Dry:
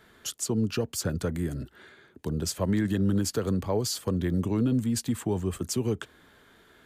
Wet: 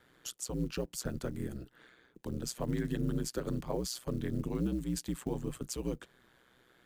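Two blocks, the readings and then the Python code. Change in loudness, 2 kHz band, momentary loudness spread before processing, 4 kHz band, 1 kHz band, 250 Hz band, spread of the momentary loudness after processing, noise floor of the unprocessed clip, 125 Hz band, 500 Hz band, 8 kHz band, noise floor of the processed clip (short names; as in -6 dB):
-8.0 dB, -8.0 dB, 9 LU, -8.5 dB, -8.0 dB, -8.5 dB, 9 LU, -59 dBFS, -8.5 dB, -8.0 dB, -8.0 dB, -67 dBFS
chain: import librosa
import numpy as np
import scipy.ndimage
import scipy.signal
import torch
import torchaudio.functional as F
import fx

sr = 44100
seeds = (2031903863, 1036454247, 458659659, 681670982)

y = fx.quant_float(x, sr, bits=4)
y = y * np.sin(2.0 * np.pi * 62.0 * np.arange(len(y)) / sr)
y = y * librosa.db_to_amplitude(-5.0)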